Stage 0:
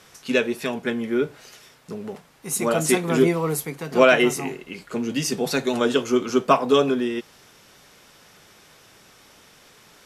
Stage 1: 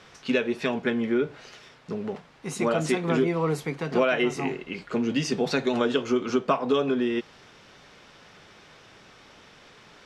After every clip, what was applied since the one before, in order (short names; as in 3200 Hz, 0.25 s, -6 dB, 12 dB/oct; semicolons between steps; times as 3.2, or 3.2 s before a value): compressor 4:1, threshold -22 dBFS, peak gain reduction 10.5 dB; LPF 4300 Hz 12 dB/oct; gain +1.5 dB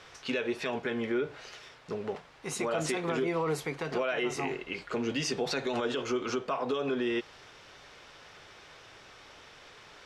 bell 200 Hz -9.5 dB 1.1 oct; limiter -22 dBFS, peak gain reduction 10.5 dB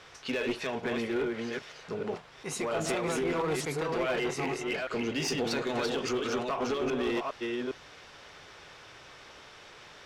reverse delay 0.406 s, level -3 dB; one-sided clip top -27.5 dBFS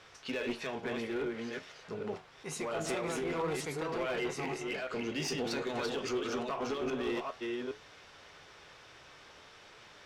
flange 0.51 Hz, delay 8.8 ms, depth 7 ms, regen +74%